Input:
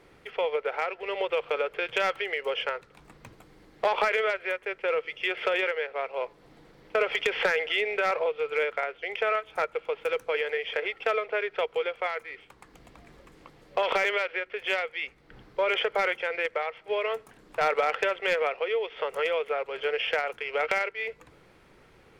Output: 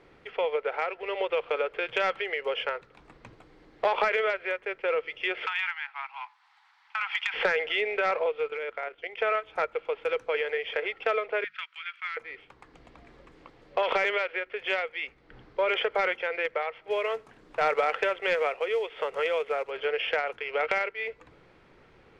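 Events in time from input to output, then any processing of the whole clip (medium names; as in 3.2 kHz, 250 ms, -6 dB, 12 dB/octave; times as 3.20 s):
5.46–7.34 s: steep high-pass 800 Hz 96 dB/octave
8.48–9.18 s: level held to a coarse grid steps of 11 dB
11.44–12.17 s: steep high-pass 1.3 kHz
16.90–19.71 s: companded quantiser 6-bit
whole clip: Bessel low-pass 4.2 kHz, order 2; hum notches 50/100/150/200 Hz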